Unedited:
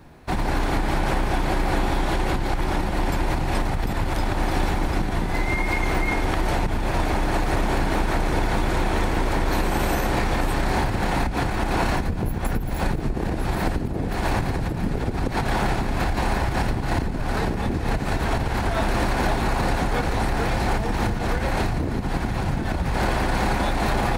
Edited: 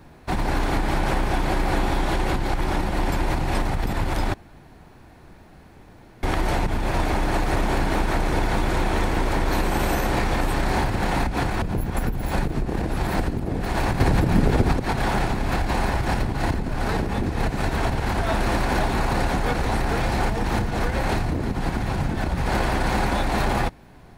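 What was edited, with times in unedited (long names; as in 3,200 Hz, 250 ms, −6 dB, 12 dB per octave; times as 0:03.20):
0:04.34–0:06.23: fill with room tone
0:11.62–0:12.10: remove
0:14.48–0:15.21: clip gain +6.5 dB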